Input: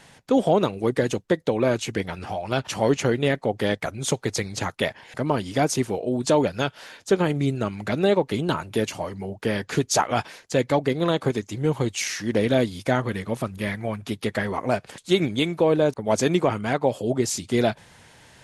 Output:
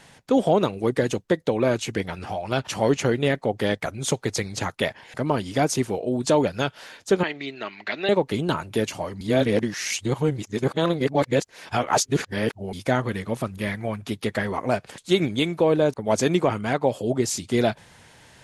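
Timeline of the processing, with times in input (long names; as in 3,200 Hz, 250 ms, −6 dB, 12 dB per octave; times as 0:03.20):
0:07.23–0:08.09: loudspeaker in its box 490–4,900 Hz, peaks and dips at 510 Hz −9 dB, 820 Hz −3 dB, 1,300 Hz −4 dB, 1,900 Hz +8 dB, 2,700 Hz +4 dB, 4,200 Hz +5 dB
0:09.21–0:12.73: reverse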